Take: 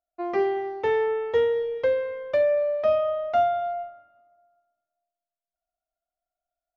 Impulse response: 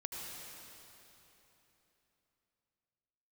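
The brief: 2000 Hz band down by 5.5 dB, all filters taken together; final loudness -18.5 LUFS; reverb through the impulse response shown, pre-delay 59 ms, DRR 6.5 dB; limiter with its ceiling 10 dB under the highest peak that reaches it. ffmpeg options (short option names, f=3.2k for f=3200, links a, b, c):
-filter_complex "[0:a]equalizer=f=2k:t=o:g=-6.5,alimiter=limit=-23.5dB:level=0:latency=1,asplit=2[a][b];[1:a]atrim=start_sample=2205,adelay=59[c];[b][c]afir=irnorm=-1:irlink=0,volume=-6.5dB[d];[a][d]amix=inputs=2:normalize=0,volume=10.5dB"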